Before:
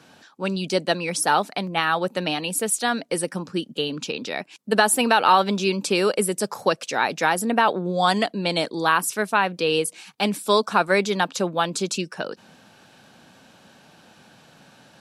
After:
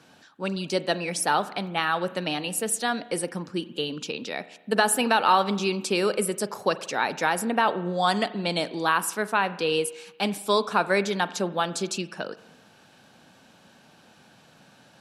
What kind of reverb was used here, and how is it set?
spring tank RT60 1 s, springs 40 ms, chirp 55 ms, DRR 14.5 dB; gain -3.5 dB

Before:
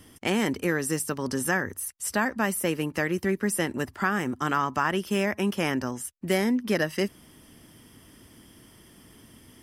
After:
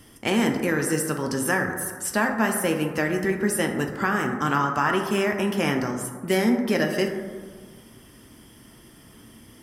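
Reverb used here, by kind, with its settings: plate-style reverb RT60 1.6 s, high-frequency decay 0.3×, DRR 3 dB; gain +1.5 dB

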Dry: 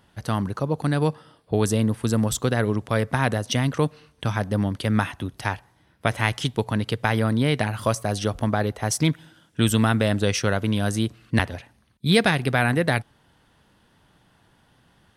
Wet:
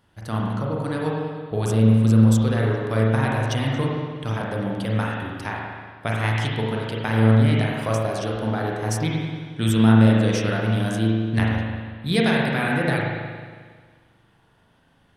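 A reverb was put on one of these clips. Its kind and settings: spring tank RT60 1.7 s, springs 36/45 ms, chirp 65 ms, DRR -3.5 dB; gain -5.5 dB

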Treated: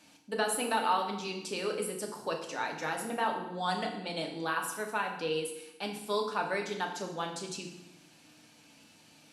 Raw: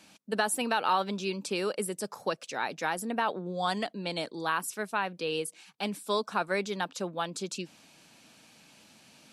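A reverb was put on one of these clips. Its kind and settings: FDN reverb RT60 0.89 s, low-frequency decay 1.3×, high-frequency decay 0.9×, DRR 1 dB; gain -4.5 dB

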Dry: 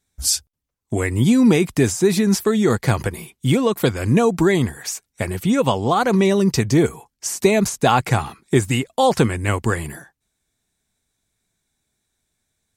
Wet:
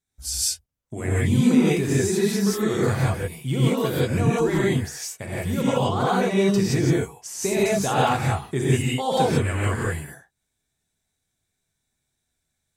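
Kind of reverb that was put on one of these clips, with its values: non-linear reverb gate 0.2 s rising, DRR -7.5 dB; gain -12 dB

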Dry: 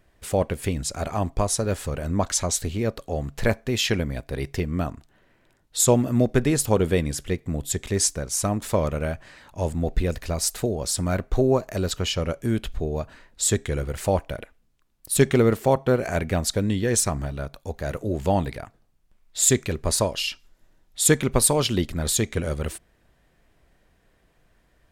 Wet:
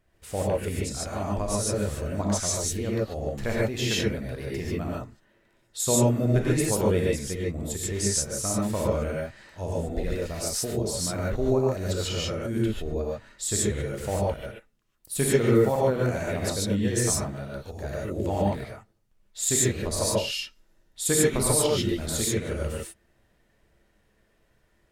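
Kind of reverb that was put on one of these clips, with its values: non-linear reverb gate 0.17 s rising, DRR -5 dB; gain -9 dB

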